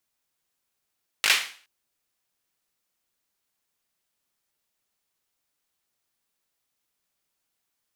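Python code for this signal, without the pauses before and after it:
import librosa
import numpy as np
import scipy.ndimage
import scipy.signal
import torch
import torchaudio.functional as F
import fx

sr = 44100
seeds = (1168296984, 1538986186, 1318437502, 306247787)

y = fx.drum_clap(sr, seeds[0], length_s=0.42, bursts=4, spacing_ms=19, hz=2400.0, decay_s=0.43)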